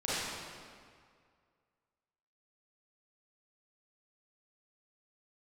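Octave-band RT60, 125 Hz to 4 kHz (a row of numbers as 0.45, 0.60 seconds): 2.1, 2.0, 2.0, 2.1, 1.8, 1.5 seconds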